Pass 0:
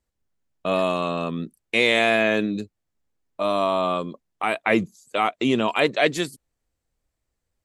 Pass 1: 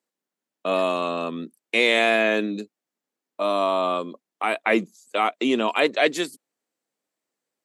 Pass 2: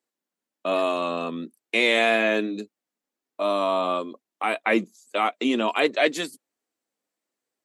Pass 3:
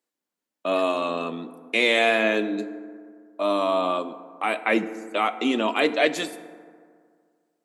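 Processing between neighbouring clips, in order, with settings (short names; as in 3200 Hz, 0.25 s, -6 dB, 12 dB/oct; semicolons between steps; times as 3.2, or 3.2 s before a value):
HPF 220 Hz 24 dB/oct
flange 1.2 Hz, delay 2.5 ms, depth 1.8 ms, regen -58%; gain +3 dB
FDN reverb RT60 2 s, low-frequency decay 1.05×, high-frequency decay 0.4×, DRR 11.5 dB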